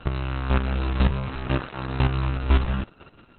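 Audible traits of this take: a buzz of ramps at a fixed pitch in blocks of 32 samples; chopped level 2 Hz, depth 60%, duty 15%; Opus

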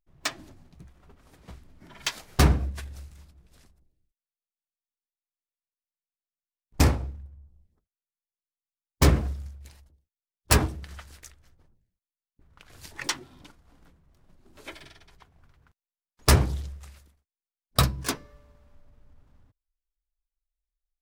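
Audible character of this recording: noise floor -96 dBFS; spectral tilt -4.5 dB/oct

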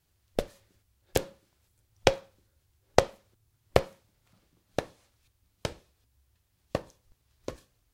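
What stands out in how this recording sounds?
noise floor -74 dBFS; spectral tilt -4.0 dB/oct

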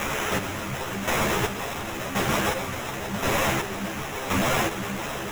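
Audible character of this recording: a quantiser's noise floor 6-bit, dither triangular; chopped level 0.93 Hz, depth 60%, duty 35%; aliases and images of a low sample rate 4500 Hz, jitter 0%; a shimmering, thickened sound

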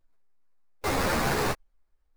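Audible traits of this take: aliases and images of a low sample rate 3100 Hz, jitter 20%; a shimmering, thickened sound

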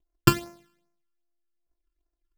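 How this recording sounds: a buzz of ramps at a fixed pitch in blocks of 128 samples; phasing stages 12, 2.5 Hz, lowest notch 640–3500 Hz

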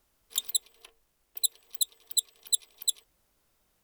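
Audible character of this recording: noise floor -73 dBFS; spectral tilt +4.0 dB/oct

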